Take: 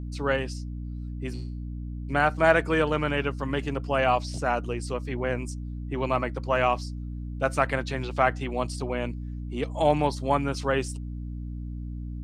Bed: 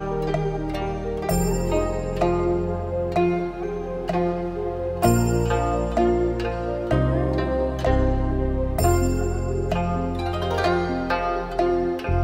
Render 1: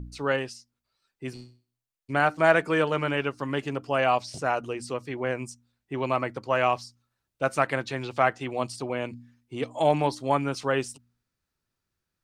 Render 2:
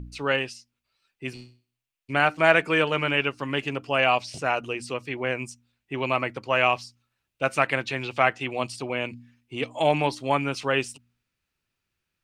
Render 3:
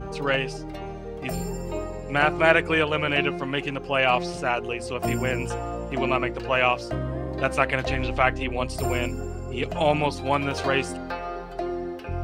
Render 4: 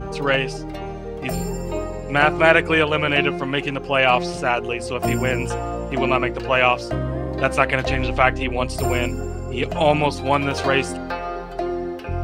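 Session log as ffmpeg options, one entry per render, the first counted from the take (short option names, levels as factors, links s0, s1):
-af "bandreject=f=60:t=h:w=4,bandreject=f=120:t=h:w=4,bandreject=f=180:t=h:w=4,bandreject=f=240:t=h:w=4,bandreject=f=300:t=h:w=4"
-af "equalizer=f=2600:t=o:w=0.77:g=10"
-filter_complex "[1:a]volume=0.376[s0];[0:a][s0]amix=inputs=2:normalize=0"
-af "volume=1.68,alimiter=limit=0.891:level=0:latency=1"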